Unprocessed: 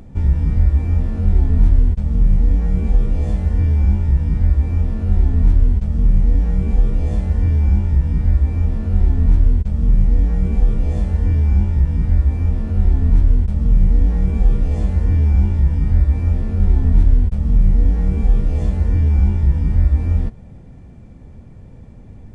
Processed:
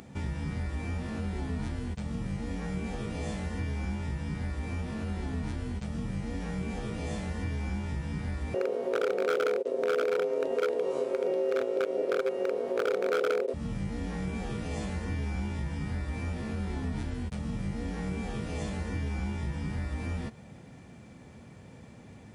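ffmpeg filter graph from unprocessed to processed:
-filter_complex "[0:a]asettb=1/sr,asplit=3[s0][s1][s2];[s0]atrim=end=8.544[s3];[s1]atrim=start=8.54:end=13.54,asetpts=PTS-STARTPTS,afade=t=in:d=0.004:c=qsin,afade=t=out:st=4.996:d=0.004:c=qsin,aeval=exprs='val(0)*sin(2*PI*460*n/s)':c=same,aeval=exprs='0.355*(abs(mod(val(0)/0.355+3,4)-2)-1)':c=same[s4];[s2]atrim=start=13.536[s5];[s3][s4]acrossfade=d=0.004:c1=hsin:c2=qsin[s6];[s6][s5]acrossfade=d=0.004:c1=qsin:c2=hsin,highpass=130,tiltshelf=f=970:g=-6,acompressor=threshold=0.0251:ratio=2"

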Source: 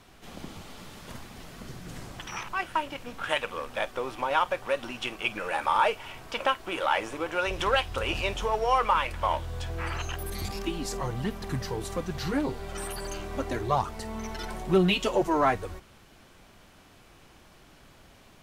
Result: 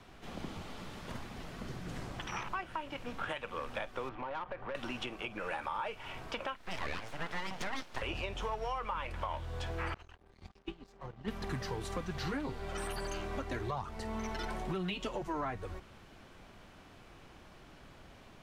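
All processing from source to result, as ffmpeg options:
-filter_complex "[0:a]asettb=1/sr,asplit=3[s0][s1][s2];[s0]atrim=end=4.094[s3];[s1]atrim=start=4.09:end=4.75,asetpts=PTS-STARTPTS,afade=t=in:d=0.004:c=qsin,afade=t=out:st=0.656:d=0.004:c=qsin,lowpass=1800,acompressor=threshold=0.0224:ratio=3:attack=3.2:release=140:knee=1:detection=peak,aeval=exprs='(tanh(35.5*val(0)+0.3)-tanh(0.3))/35.5':c=same[s4];[s2]atrim=start=4.746[s5];[s3][s4]acrossfade=d=0.004:c1=hsin:c2=qsin[s6];[s6][s5]acrossfade=d=0.004:c1=qsin:c2=hsin,asettb=1/sr,asplit=3[s7][s8][s9];[s7]atrim=end=6.564[s10];[s8]atrim=start=6.56:end=8.02,asetpts=PTS-STARTPTS,afade=t=in:d=0.004:c=qsin,afade=t=out:st=1.456:d=0.004:c=qsin,highpass=f=140:w=0.5412,highpass=f=140:w=1.3066,aeval=exprs='abs(val(0))':c=same[s11];[s9]atrim=start=8.016[s12];[s10][s11]acrossfade=d=0.004:c1=hsin:c2=qsin[s13];[s13][s12]acrossfade=d=0.004:c1=qsin:c2=hsin,asettb=1/sr,asplit=3[s14][s15][s16];[s14]atrim=end=9.944[s17];[s15]atrim=start=9.94:end=11.28,asetpts=PTS-STARTPTS,afade=t=in:d=0.004:c=qsin,afade=t=out:st=1.336:d=0.004:c=qsin,agate=range=0.0224:threshold=0.0794:ratio=3:release=100:detection=peak,lowpass=5200,aeval=exprs='sgn(val(0))*max(abs(val(0))-0.00158,0)':c=same[s18];[s16]atrim=start=11.276[s19];[s17][s18]acrossfade=d=0.004:c1=hsin:c2=qsin[s20];[s20][s19]acrossfade=d=0.004:c1=qsin:c2=hsin,lowpass=f=3400:p=1,alimiter=limit=0.0841:level=0:latency=1:release=354,acrossover=split=230|1000[s21][s22][s23];[s21]acompressor=threshold=0.0112:ratio=4[s24];[s22]acompressor=threshold=0.00891:ratio=4[s25];[s23]acompressor=threshold=0.0112:ratio=4[s26];[s24][s25][s26]amix=inputs=3:normalize=0"

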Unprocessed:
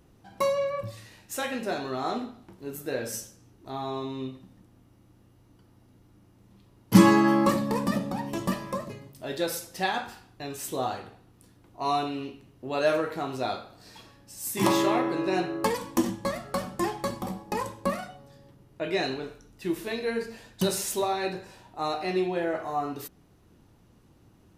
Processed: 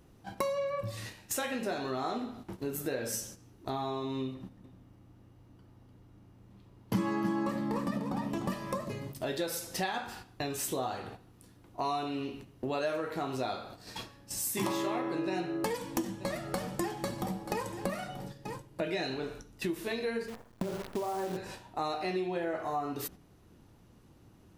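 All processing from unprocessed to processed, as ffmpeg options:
-filter_complex "[0:a]asettb=1/sr,asplit=3[s0][s1][s2];[s0]atrim=end=4.344[s3];[s1]atrim=start=4.34:end=8.5,asetpts=PTS-STARTPTS,afade=t=in:d=0.004:c=qsin,afade=t=out:st=4.156:d=0.004:c=qsin,highshelf=f=3800:g=-7.5,aecho=1:1:299:0.398,atrim=end_sample=183456[s4];[s2]atrim=start=8.496[s5];[s3][s4]acrossfade=d=0.004:c1=hsin:c2=qsin[s6];[s6][s5]acrossfade=d=0.004:c1=qsin:c2=hsin,asettb=1/sr,asplit=3[s7][s8][s9];[s7]atrim=end=15.154[s10];[s8]atrim=start=15.15:end=19.15,asetpts=PTS-STARTPTS,afade=t=in:d=0.004:c=qsin,afade=t=out:st=3.996:d=0.004:c=qsin,bandreject=f=1100:w=8.6,aecho=1:1:6.4:0.3,atrim=end_sample=176400,aecho=1:1:933:0.112,atrim=end_sample=176400[s11];[s9]atrim=start=19.146[s12];[s10][s11]acrossfade=d=0.004:c1=hsin:c2=qsin[s13];[s13][s12]acrossfade=d=0.004:c1=qsin:c2=hsin,asettb=1/sr,asplit=3[s14][s15][s16];[s14]atrim=end=20.284[s17];[s15]atrim=start=20.28:end=21.37,asetpts=PTS-STARTPTS,afade=t=in:d=0.004:c=qsin,afade=t=out:st=1.086:d=0.004:c=qsin,lowpass=f=1300:w=0.5412,lowpass=f=1300:w=1.3066,acompressor=threshold=0.0398:ratio=16:attack=3.2:release=140:knee=1:detection=peak,acrusher=bits=8:dc=4:mix=0:aa=0.000001[s18];[s16]atrim=start=21.366[s19];[s17][s18]acrossfade=d=0.004:c1=hsin:c2=qsin[s20];[s20][s19]acrossfade=d=0.004:c1=qsin:c2=hsin,agate=range=0.355:threshold=0.00355:ratio=16:detection=peak,acompressor=threshold=0.00794:ratio=4,volume=2.66"

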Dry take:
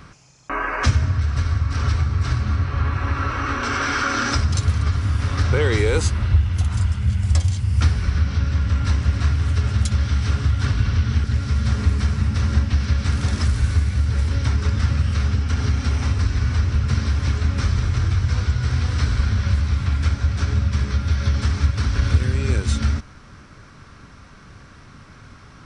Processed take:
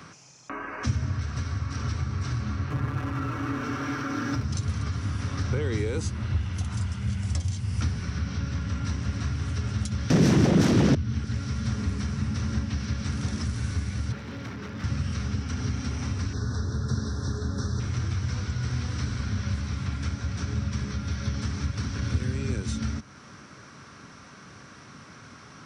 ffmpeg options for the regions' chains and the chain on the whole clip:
-filter_complex "[0:a]asettb=1/sr,asplit=3[s0][s1][s2];[s0]atrim=end=2.704[s3];[s1]atrim=start=2.7:end=4.45,asetpts=PTS-STARTPTS,afade=t=in:d=0.004:c=qsin,afade=t=out:st=1.746:d=0.004:c=qsin,aeval=exprs='val(0)+0.5*0.0708*sgn(val(0))':c=same,aemphasis=mode=reproduction:type=75kf,aecho=1:1:6.7:0.54,atrim=end_sample=77175[s4];[s2]atrim=start=4.446[s5];[s3][s4]acrossfade=d=0.004:c1=hsin:c2=qsin[s6];[s6][s5]acrossfade=d=0.004:c1=qsin:c2=hsin,asettb=1/sr,asplit=3[s7][s8][s9];[s7]atrim=end=10.104[s10];[s8]atrim=start=10.1:end=10.95,asetpts=PTS-STARTPTS,afade=t=in:d=0.004:c=qsin,afade=t=out:st=0.846:d=0.004:c=qsin,asplit=2[s11][s12];[s12]adelay=42,volume=0.299[s13];[s11][s13]amix=inputs=2:normalize=0,atrim=end_sample=37485,aeval=exprs='0.422*sin(PI/2*7.94*val(0)/0.422)':c=same[s14];[s9]atrim=start=10.946[s15];[s10][s14]acrossfade=d=0.004:c1=hsin:c2=qsin[s16];[s16][s15]acrossfade=d=0.004:c1=qsin:c2=hsin,asettb=1/sr,asplit=3[s17][s18][s19];[s17]atrim=end=14.124[s20];[s18]atrim=start=14.12:end=14.84,asetpts=PTS-STARTPTS,afade=t=in:d=0.004:c=qsin,afade=t=out:st=0.716:d=0.004:c=qsin,highpass=150,lowpass=3300,volume=21.1,asoftclip=hard,volume=0.0473[s21];[s19]atrim=start=14.836[s22];[s20][s21]acrossfade=d=0.004:c1=hsin:c2=qsin[s23];[s23][s22]acrossfade=d=0.004:c1=qsin:c2=hsin,asettb=1/sr,asplit=3[s24][s25][s26];[s24]atrim=end=16.334[s27];[s25]atrim=start=16.33:end=17.8,asetpts=PTS-STARTPTS,afade=t=in:d=0.004:c=qsin,afade=t=out:st=1.466:d=0.004:c=qsin,asuperstop=centerf=2500:order=12:qfactor=1.4,equalizer=f=420:w=5.5:g=7.5[s28];[s26]atrim=start=17.796[s29];[s27][s28]acrossfade=d=0.004:c1=hsin:c2=qsin[s30];[s30][s29]acrossfade=d=0.004:c1=qsin:c2=hsin,highpass=150,equalizer=f=5800:t=o:w=0.24:g=6,acrossover=split=270[s31][s32];[s32]acompressor=threshold=0.00562:ratio=2[s33];[s31][s33]amix=inputs=2:normalize=0"

